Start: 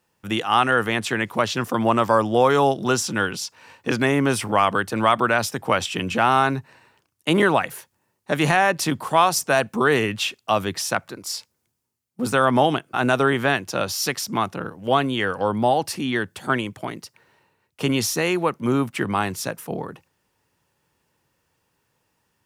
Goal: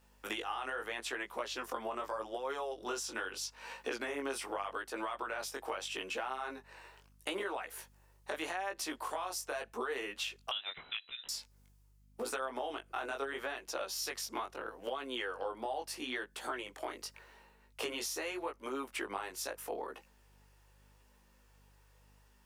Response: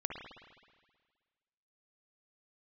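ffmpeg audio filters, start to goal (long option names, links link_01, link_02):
-filter_complex "[0:a]highpass=frequency=360:width=0.5412,highpass=frequency=360:width=1.3066,alimiter=limit=-11.5dB:level=0:latency=1:release=37,acompressor=threshold=-38dB:ratio=6,aeval=exprs='val(0)+0.000447*(sin(2*PI*50*n/s)+sin(2*PI*2*50*n/s)/2+sin(2*PI*3*50*n/s)/3+sin(2*PI*4*50*n/s)/4+sin(2*PI*5*50*n/s)/5)':channel_layout=same,flanger=delay=15:depth=7.4:speed=0.8,asettb=1/sr,asplit=3[link_01][link_02][link_03];[link_01]atrim=end=10.514[link_04];[link_02]atrim=start=10.51:end=11.29,asetpts=PTS-STARTPTS,afade=type=in:duration=0.004:curve=qsin,afade=type=out:start_time=0.776:duration=0.004:curve=qsin,lowpass=frequency=3400:width_type=q:width=0.5098,lowpass=frequency=3400:width_type=q:width=0.6013,lowpass=frequency=3400:width_type=q:width=0.9,lowpass=frequency=3400:width_type=q:width=2.563,afreqshift=-4000[link_05];[link_03]atrim=start=11.286[link_06];[link_04][link_05]acrossfade=duration=0.004:curve1=hsin:curve2=qsin[link_07];[link_07][link_06]acrossfade=duration=0.004:curve1=qsin:curve2=hsin,volume=4dB"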